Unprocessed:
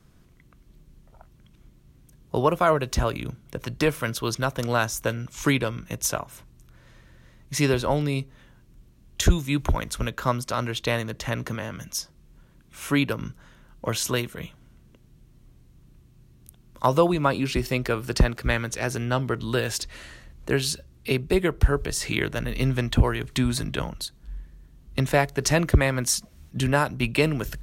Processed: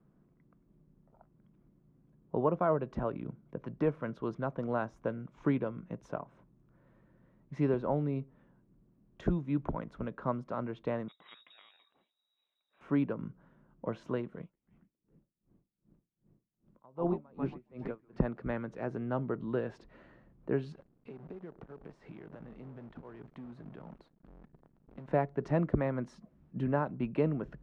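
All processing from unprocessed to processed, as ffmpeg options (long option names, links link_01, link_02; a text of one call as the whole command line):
ffmpeg -i in.wav -filter_complex "[0:a]asettb=1/sr,asplit=3[link_01][link_02][link_03];[link_01]atrim=end=11.084[link_04];[link_02]atrim=start=11.08:end=12.81,asetpts=PTS-STARTPTS,afade=type=in:duration=0.004:curve=qsin,afade=type=out:start_time=1.726:duration=0.004:curve=qsin,highshelf=frequency=2200:gain=-11,lowpass=frequency=3300:width_type=q:width=0.5098,lowpass=frequency=3300:width_type=q:width=0.6013,lowpass=frequency=3300:width_type=q:width=0.9,lowpass=frequency=3300:width_type=q:width=2.563,afreqshift=-3900[link_05];[link_03]atrim=start=12.806[link_06];[link_04][link_05]acrossfade=duration=0.004:curve1=hsin:curve2=qsin[link_07];[link_07][link_06]acrossfade=duration=0.004:curve1=qsin:curve2=hsin,asettb=1/sr,asplit=3[link_08][link_09][link_10];[link_08]atrim=end=14.394[link_11];[link_09]atrim=start=14.39:end=18.18,asetpts=PTS-STARTPTS,afade=type=in:duration=0.004:curve=qsin,afade=type=out:start_time=3.786:duration=0.004:curve=qsin,asplit=7[link_12][link_13][link_14][link_15][link_16][link_17][link_18];[link_13]adelay=138,afreqshift=-120,volume=-7dB[link_19];[link_14]adelay=276,afreqshift=-240,volume=-12.8dB[link_20];[link_15]adelay=414,afreqshift=-360,volume=-18.7dB[link_21];[link_16]adelay=552,afreqshift=-480,volume=-24.5dB[link_22];[link_17]adelay=690,afreqshift=-600,volume=-30.4dB[link_23];[link_18]adelay=828,afreqshift=-720,volume=-36.2dB[link_24];[link_12][link_19][link_20][link_21][link_22][link_23][link_24]amix=inputs=7:normalize=0,atrim=end_sample=167139,aeval=exprs='val(0)*pow(10,-31*(0.5-0.5*cos(2*PI*2.6*n/s))/20)':channel_layout=same[link_25];[link_10]atrim=start=18.176[link_26];[link_11][link_25]acrossfade=duration=0.004:curve1=hsin:curve2=qsin[link_27];[link_27][link_26]acrossfade=duration=0.004:curve1=qsin:curve2=hsin,asettb=1/sr,asplit=3[link_28][link_29][link_30];[link_28]atrim=end=20.724[link_31];[link_29]atrim=start=20.72:end=25.08,asetpts=PTS-STARTPTS,afade=type=in:duration=0.004:curve=qsin,afade=type=out:start_time=4.356:duration=0.004:curve=qsin,acompressor=threshold=-34dB:ratio=16:attack=3.2:release=140:knee=1:detection=peak,acrusher=bits=8:dc=4:mix=0:aa=0.000001[link_32];[link_30]atrim=start=25.076[link_33];[link_31][link_32]acrossfade=duration=0.004:curve1=hsin:curve2=qsin[link_34];[link_34][link_33]acrossfade=duration=0.004:curve1=qsin:curve2=hsin,lowpass=1000,lowshelf=frequency=120:width_type=q:width=1.5:gain=-10.5,volume=-7.5dB" out.wav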